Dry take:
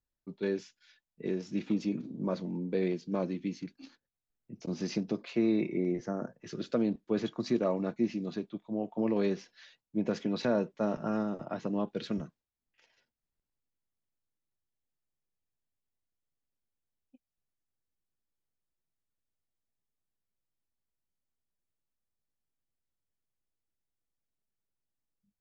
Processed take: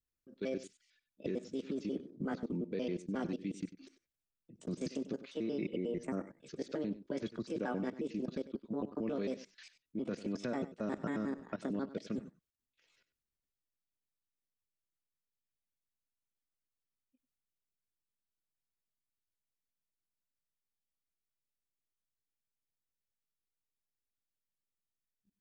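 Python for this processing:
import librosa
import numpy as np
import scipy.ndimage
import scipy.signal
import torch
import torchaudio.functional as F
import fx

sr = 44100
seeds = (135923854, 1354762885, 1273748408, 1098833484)

p1 = fx.pitch_trill(x, sr, semitones=5.0, every_ms=90)
p2 = fx.peak_eq(p1, sr, hz=810.0, db=-11.5, octaves=0.51)
p3 = fx.level_steps(p2, sr, step_db=19)
p4 = p3 + fx.echo_single(p3, sr, ms=96, db=-15.0, dry=0)
y = p4 * librosa.db_to_amplitude(2.0)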